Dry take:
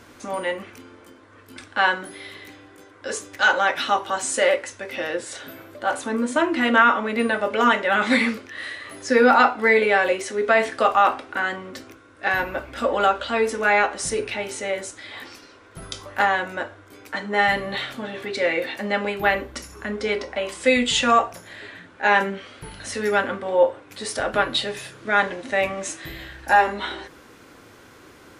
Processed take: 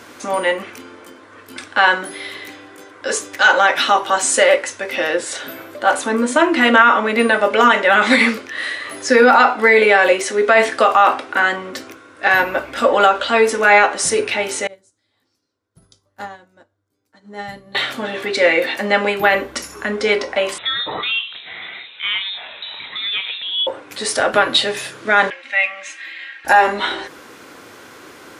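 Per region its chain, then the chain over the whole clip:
0:14.67–0:17.75: drawn EQ curve 110 Hz 0 dB, 230 Hz −8 dB, 410 Hz −14 dB, 2,600 Hz −23 dB, 4,500 Hz −12 dB + expander for the loud parts 2.5 to 1, over −48 dBFS
0:20.58–0:23.67: downward compressor 2 to 1, threshold −37 dBFS + voice inversion scrambler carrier 3,900 Hz
0:25.30–0:26.45: resonant band-pass 2,300 Hz, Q 2.8 + comb filter 3.7 ms, depth 90%
whole clip: high-pass filter 290 Hz 6 dB per octave; boost into a limiter +10 dB; level −1 dB

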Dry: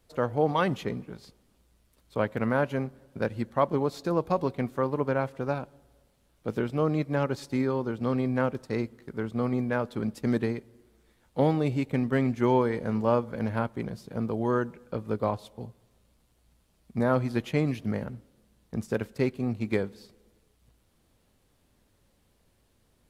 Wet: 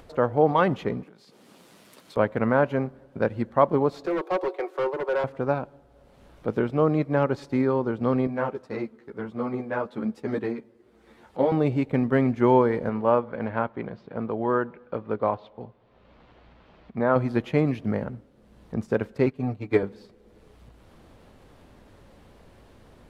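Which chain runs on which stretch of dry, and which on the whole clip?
0:01.03–0:02.17: high-pass filter 150 Hz 24 dB per octave + high-shelf EQ 2,400 Hz +11 dB + downward compressor 16 to 1, threshold −50 dBFS
0:04.06–0:05.24: Butterworth high-pass 310 Hz 96 dB per octave + gain into a clipping stage and back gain 29.5 dB + comb filter 5.4 ms, depth 52%
0:08.27–0:11.52: high-pass filter 160 Hz 6 dB per octave + string-ensemble chorus
0:12.89–0:17.16: Bessel low-pass filter 2,600 Hz, order 4 + spectral tilt +2 dB per octave
0:19.26–0:19.83: comb filter 6.8 ms, depth 86% + expander for the loud parts, over −39 dBFS
whole clip: low-pass filter 1,100 Hz 6 dB per octave; low-shelf EQ 350 Hz −7 dB; upward compression, threshold −48 dBFS; level +8.5 dB

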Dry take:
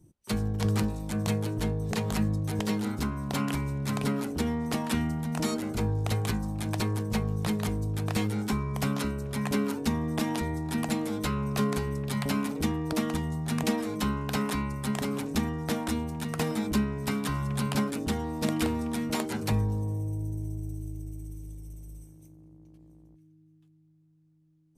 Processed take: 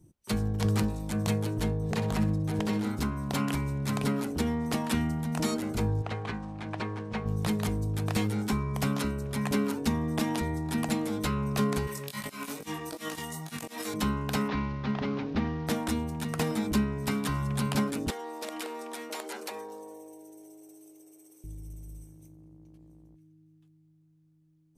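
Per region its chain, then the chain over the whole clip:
0:01.77–0:02.85: high-shelf EQ 4,200 Hz −7 dB + flutter between parallel walls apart 10.9 metres, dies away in 0.35 s
0:06.02–0:07.26: variable-slope delta modulation 64 kbit/s + low-pass filter 2,000 Hz + spectral tilt +2.5 dB per octave
0:11.87–0:13.94: spectral tilt +4 dB per octave + compressor whose output falls as the input rises −35 dBFS, ratio −0.5 + chorus effect 2.5 Hz, delay 19 ms, depth 2.5 ms
0:14.48–0:15.67: variable-slope delta modulation 32 kbit/s + low-pass filter 3,400 Hz + hard clipping −20.5 dBFS
0:18.10–0:21.44: high-pass filter 390 Hz 24 dB per octave + downward compressor 3 to 1, threshold −34 dBFS
whole clip: no processing

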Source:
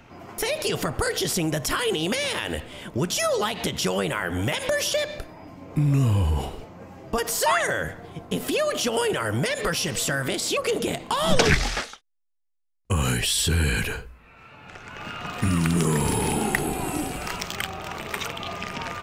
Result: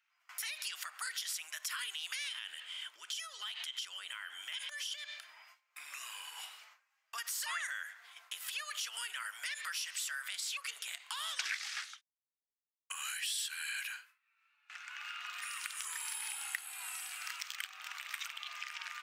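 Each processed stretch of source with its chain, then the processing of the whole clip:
0:02.28–0:05.42: parametric band 13,000 Hz −7 dB 0.25 octaves + downward compressor, threshold −29 dBFS + hollow resonant body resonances 290/3,100 Hz, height 13 dB, ringing for 20 ms
whole clip: noise gate with hold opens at −31 dBFS; high-pass filter 1,400 Hz 24 dB per octave; downward compressor 2 to 1, threshold −42 dBFS; level −2 dB

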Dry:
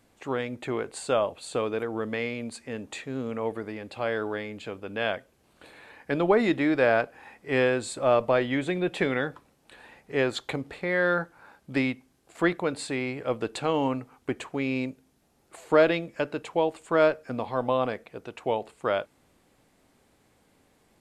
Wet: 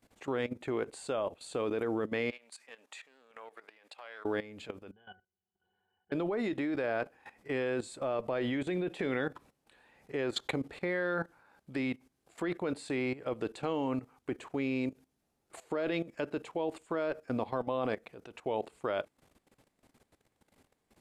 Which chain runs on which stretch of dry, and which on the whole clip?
0:02.31–0:04.25: high-pass filter 880 Hz + downward compressor 3 to 1, threshold −44 dBFS + highs frequency-modulated by the lows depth 0.11 ms
0:04.91–0:06.12: Chebyshev low-pass with heavy ripple 4,200 Hz, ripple 9 dB + resonances in every octave F#, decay 0.12 s
whole clip: dynamic equaliser 340 Hz, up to +4 dB, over −38 dBFS, Q 1.5; brickwall limiter −15.5 dBFS; output level in coarse steps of 16 dB

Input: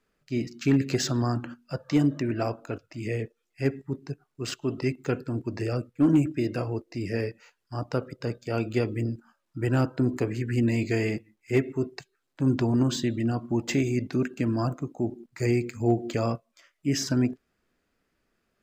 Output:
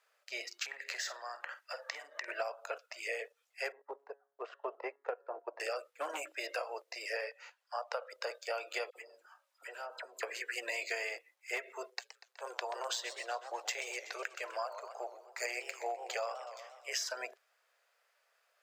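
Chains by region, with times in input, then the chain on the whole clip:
0:00.66–0:02.28: parametric band 1,900 Hz +12.5 dB 0.37 octaves + downward compressor, threshold −36 dBFS + double-tracking delay 49 ms −12 dB
0:03.72–0:05.60: low-pass filter 1,000 Hz + hum removal 139.4 Hz, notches 14 + transient designer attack +8 dB, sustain −7 dB
0:07.17–0:08.12: linear-phase brick-wall high-pass 430 Hz + high-shelf EQ 6,000 Hz −9 dB
0:08.90–0:10.23: notch comb filter 170 Hz + downward compressor 5 to 1, threshold −35 dBFS + all-pass dispersion lows, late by 58 ms, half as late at 1,600 Hz
0:11.90–0:16.97: linear-phase brick-wall high-pass 330 Hz + amplitude modulation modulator 120 Hz, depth 35% + feedback echo with a swinging delay time 124 ms, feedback 57%, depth 210 cents, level −14 dB
whole clip: Butterworth high-pass 530 Hz 48 dB per octave; downward compressor 12 to 1, threshold −37 dBFS; level +3.5 dB

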